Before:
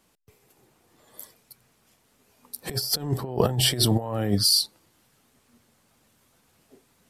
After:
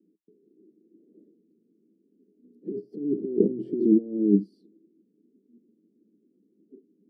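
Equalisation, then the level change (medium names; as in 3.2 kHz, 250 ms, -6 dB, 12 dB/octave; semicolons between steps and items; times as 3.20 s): elliptic band-pass 190–410 Hz, stop band 50 dB; peaking EQ 320 Hz +8 dB 0.22 oct; +4.5 dB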